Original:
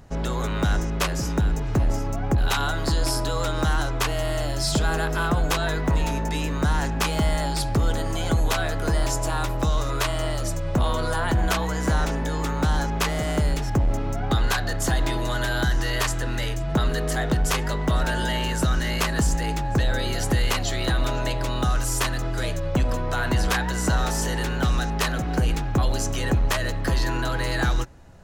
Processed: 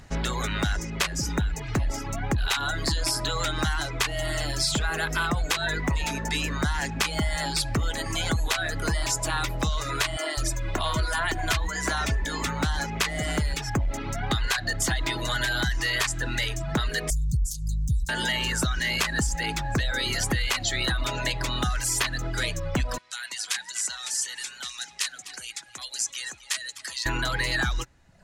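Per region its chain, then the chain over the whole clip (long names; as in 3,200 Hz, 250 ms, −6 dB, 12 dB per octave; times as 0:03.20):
0:10.17–0:12.47: comb filter 2.9 ms, depth 37% + multiband delay without the direct sound highs, lows 200 ms, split 260 Hz
0:17.10–0:18.09: inverse Chebyshev band-stop filter 370–2,200 Hz, stop band 60 dB + low-shelf EQ 480 Hz +7.5 dB
0:22.98–0:27.06: low-pass filter 10,000 Hz 24 dB per octave + first difference + single-tap delay 251 ms −12.5 dB
whole clip: reverb reduction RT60 0.91 s; octave-band graphic EQ 500/2,000/4,000/8,000 Hz −3/+7/+5/+5 dB; downward compressor, threshold −22 dBFS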